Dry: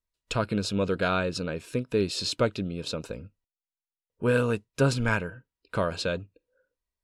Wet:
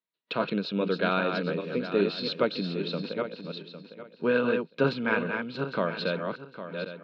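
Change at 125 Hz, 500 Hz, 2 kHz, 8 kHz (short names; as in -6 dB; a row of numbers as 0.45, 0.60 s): -6.0 dB, +1.0 dB, +1.0 dB, under -25 dB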